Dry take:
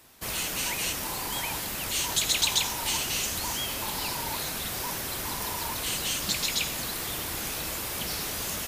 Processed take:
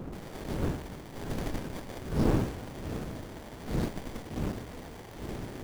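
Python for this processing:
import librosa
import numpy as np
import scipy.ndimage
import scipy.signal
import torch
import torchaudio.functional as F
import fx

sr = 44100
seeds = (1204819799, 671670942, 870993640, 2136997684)

y = fx.speed_glide(x, sr, from_pct=170, to_pct=138)
y = fx.dmg_wind(y, sr, seeds[0], corner_hz=330.0, level_db=-27.0)
y = fx.running_max(y, sr, window=33)
y = y * librosa.db_to_amplitude(-7.0)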